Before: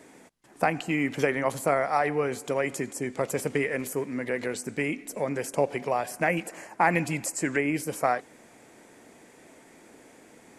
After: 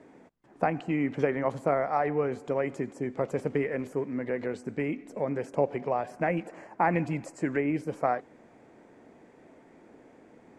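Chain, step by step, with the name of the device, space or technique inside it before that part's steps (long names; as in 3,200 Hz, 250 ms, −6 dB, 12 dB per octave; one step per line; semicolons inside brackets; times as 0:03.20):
through cloth (low-pass filter 7,200 Hz 12 dB per octave; high-shelf EQ 2,200 Hz −16.5 dB)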